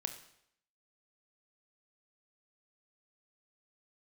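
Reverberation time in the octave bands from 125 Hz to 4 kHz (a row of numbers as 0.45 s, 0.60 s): 0.70 s, 0.70 s, 0.75 s, 0.70 s, 0.70 s, 0.70 s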